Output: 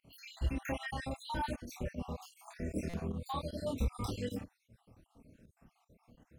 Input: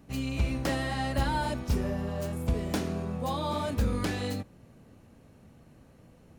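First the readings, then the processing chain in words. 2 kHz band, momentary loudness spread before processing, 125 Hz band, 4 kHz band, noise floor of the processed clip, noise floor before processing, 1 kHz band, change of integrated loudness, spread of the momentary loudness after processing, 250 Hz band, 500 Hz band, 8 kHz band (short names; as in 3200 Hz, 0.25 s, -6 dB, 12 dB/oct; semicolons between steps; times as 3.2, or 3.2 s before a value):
-8.5 dB, 4 LU, -9.0 dB, -9.0 dB, -78 dBFS, -57 dBFS, -8.0 dB, -8.5 dB, 8 LU, -8.5 dB, -8.0 dB, -8.5 dB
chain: random spectral dropouts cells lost 67%; chorus voices 4, 0.6 Hz, delay 27 ms, depth 2.3 ms; pump 154 bpm, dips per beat 1, -12 dB, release 82 ms; stuck buffer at 2.89, samples 256, times 7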